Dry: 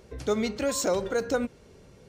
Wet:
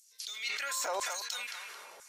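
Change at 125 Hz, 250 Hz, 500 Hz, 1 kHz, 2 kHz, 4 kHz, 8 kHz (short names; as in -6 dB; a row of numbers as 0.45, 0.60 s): under -35 dB, -30.5 dB, -16.0 dB, -3.0 dB, 0.0 dB, +2.0 dB, -1.5 dB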